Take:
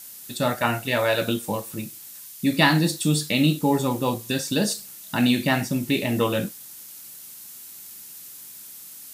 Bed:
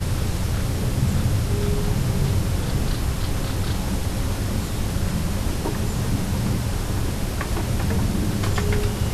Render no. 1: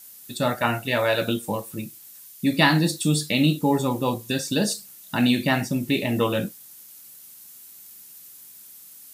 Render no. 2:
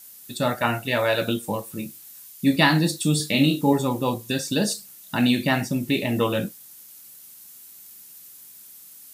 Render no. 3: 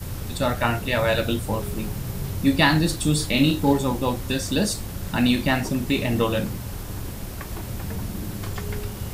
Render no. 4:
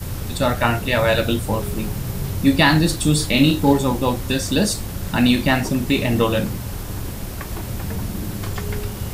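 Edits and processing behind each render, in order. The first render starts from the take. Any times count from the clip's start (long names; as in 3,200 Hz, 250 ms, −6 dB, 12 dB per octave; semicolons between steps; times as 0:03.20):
broadband denoise 6 dB, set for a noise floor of −42 dBFS
0:01.73–0:02.56: double-tracking delay 22 ms −5.5 dB; 0:03.17–0:03.73: double-tracking delay 29 ms −5 dB
mix in bed −8.5 dB
level +4 dB; brickwall limiter −1 dBFS, peak gain reduction 2 dB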